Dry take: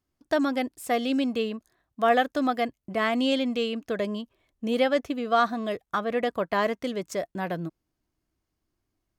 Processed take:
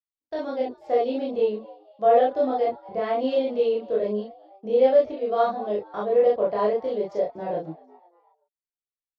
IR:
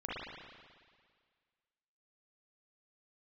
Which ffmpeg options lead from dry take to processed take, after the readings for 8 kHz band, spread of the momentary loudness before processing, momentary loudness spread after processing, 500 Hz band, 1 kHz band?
n/a, 9 LU, 12 LU, +6.5 dB, +1.0 dB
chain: -filter_complex "[0:a]agate=range=-33dB:threshold=-39dB:ratio=3:detection=peak,firequalizer=gain_entry='entry(110,0);entry(250,-10);entry(470,-1);entry(1200,-9);entry(4800,-3);entry(8900,-30)':delay=0.05:min_phase=1,acrossover=split=260|820|4300[a][b][c][d];[b]dynaudnorm=f=170:g=5:m=14dB[e];[a][e][c][d]amix=inputs=4:normalize=0,asplit=4[f][g][h][i];[g]adelay=242,afreqshift=90,volume=-22.5dB[j];[h]adelay=484,afreqshift=180,volume=-28.9dB[k];[i]adelay=726,afreqshift=270,volume=-35.3dB[l];[f][j][k][l]amix=inputs=4:normalize=0[m];[1:a]atrim=start_sample=2205,afade=t=out:st=0.18:d=0.01,atrim=end_sample=8379,asetrate=83790,aresample=44100[n];[m][n]afir=irnorm=-1:irlink=0"

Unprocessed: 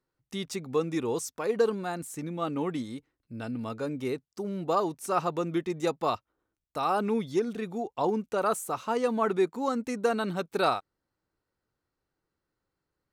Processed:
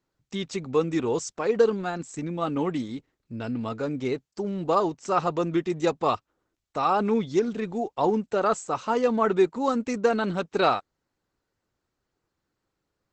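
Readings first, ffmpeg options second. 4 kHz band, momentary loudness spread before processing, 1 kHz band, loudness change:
+2.5 dB, 9 LU, +4.0 dB, +4.0 dB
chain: -af "volume=4.5dB" -ar 48000 -c:a libopus -b:a 12k

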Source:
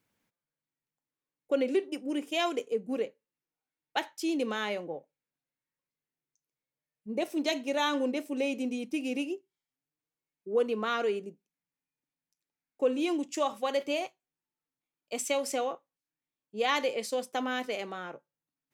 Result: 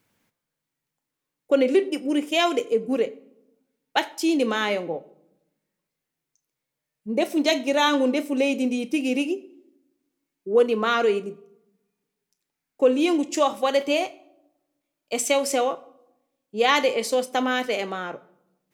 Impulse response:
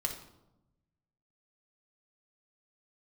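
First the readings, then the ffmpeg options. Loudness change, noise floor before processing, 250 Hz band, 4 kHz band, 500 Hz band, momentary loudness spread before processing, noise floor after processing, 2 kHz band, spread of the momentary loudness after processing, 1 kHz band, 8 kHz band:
+8.5 dB, under -85 dBFS, +8.5 dB, +8.5 dB, +8.5 dB, 11 LU, -84 dBFS, +8.5 dB, 12 LU, +8.5 dB, +8.5 dB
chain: -filter_complex "[0:a]asplit=2[a][b];[1:a]atrim=start_sample=2205,adelay=30[c];[b][c]afir=irnorm=-1:irlink=0,volume=-17.5dB[d];[a][d]amix=inputs=2:normalize=0,volume=8.5dB"

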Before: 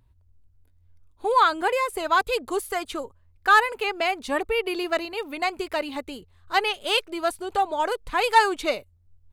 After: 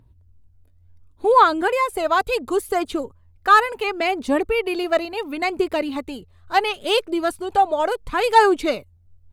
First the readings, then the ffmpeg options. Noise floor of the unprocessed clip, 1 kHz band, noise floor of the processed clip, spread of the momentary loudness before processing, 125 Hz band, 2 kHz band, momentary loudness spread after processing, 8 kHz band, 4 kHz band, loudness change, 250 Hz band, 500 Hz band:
-60 dBFS, +4.0 dB, -55 dBFS, 13 LU, n/a, +1.0 dB, 13 LU, +0.5 dB, +0.5 dB, +4.0 dB, +8.0 dB, +6.0 dB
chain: -af "aphaser=in_gain=1:out_gain=1:delay=1.7:decay=0.37:speed=0.71:type=triangular,equalizer=f=250:w=0.4:g=7.5"

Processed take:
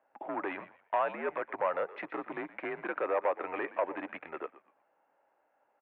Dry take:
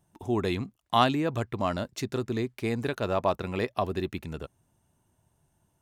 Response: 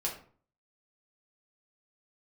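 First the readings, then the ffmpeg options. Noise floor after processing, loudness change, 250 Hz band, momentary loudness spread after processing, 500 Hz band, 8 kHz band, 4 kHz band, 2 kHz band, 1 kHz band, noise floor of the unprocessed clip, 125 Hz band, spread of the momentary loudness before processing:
-75 dBFS, -6.0 dB, -12.5 dB, 11 LU, -3.5 dB, under -30 dB, under -20 dB, -1.5 dB, -4.5 dB, -74 dBFS, -28.5 dB, 10 LU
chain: -filter_complex "[0:a]acompressor=threshold=-28dB:ratio=6,asoftclip=type=hard:threshold=-28.5dB,asplit=2[a][b];[b]asplit=3[c][d][e];[c]adelay=120,afreqshift=-83,volume=-16dB[f];[d]adelay=240,afreqshift=-166,volume=-26.2dB[g];[e]adelay=360,afreqshift=-249,volume=-36.3dB[h];[f][g][h]amix=inputs=3:normalize=0[i];[a][i]amix=inputs=2:normalize=0,highpass=f=540:t=q:w=0.5412,highpass=f=540:t=q:w=1.307,lowpass=f=2.3k:t=q:w=0.5176,lowpass=f=2.3k:t=q:w=0.7071,lowpass=f=2.3k:t=q:w=1.932,afreqshift=-78,volume=6.5dB"

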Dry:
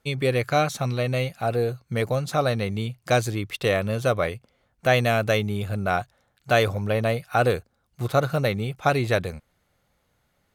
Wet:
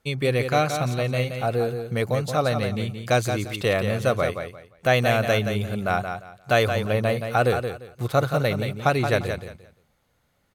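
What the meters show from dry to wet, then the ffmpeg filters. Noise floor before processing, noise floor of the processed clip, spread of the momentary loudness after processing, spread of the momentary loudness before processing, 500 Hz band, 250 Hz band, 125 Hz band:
-70 dBFS, -68 dBFS, 8 LU, 7 LU, +1.0 dB, +1.0 dB, +0.5 dB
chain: -af "aecho=1:1:174|348|522:0.422|0.097|0.0223"

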